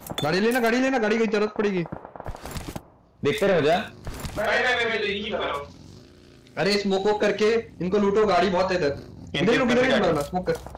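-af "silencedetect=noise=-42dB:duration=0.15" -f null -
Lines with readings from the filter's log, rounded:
silence_start: 2.83
silence_end: 3.23 | silence_duration: 0.40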